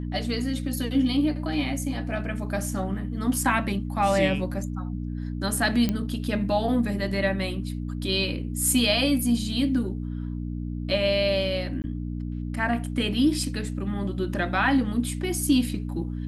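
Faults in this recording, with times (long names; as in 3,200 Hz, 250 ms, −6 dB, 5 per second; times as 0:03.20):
mains hum 60 Hz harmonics 5 −31 dBFS
0:05.89: click −12 dBFS
0:11.82–0:11.84: drop-out 19 ms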